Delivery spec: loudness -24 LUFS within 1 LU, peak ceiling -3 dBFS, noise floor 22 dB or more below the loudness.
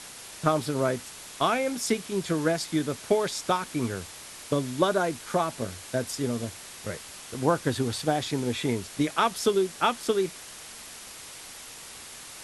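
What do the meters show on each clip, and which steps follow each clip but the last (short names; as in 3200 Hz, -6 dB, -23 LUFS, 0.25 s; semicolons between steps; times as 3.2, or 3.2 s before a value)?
noise floor -44 dBFS; noise floor target -50 dBFS; loudness -28.0 LUFS; peak -8.0 dBFS; loudness target -24.0 LUFS
-> denoiser 6 dB, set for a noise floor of -44 dBFS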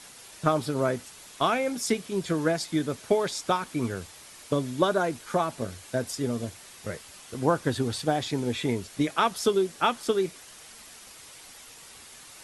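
noise floor -48 dBFS; noise floor target -50 dBFS
-> denoiser 6 dB, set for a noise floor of -48 dBFS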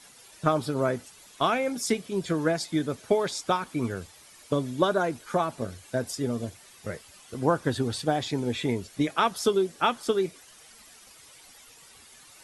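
noise floor -53 dBFS; loudness -28.0 LUFS; peak -8.0 dBFS; loudness target -24.0 LUFS
-> gain +4 dB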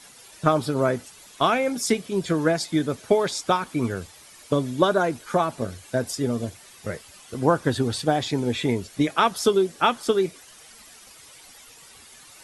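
loudness -24.0 LUFS; peak -4.0 dBFS; noise floor -49 dBFS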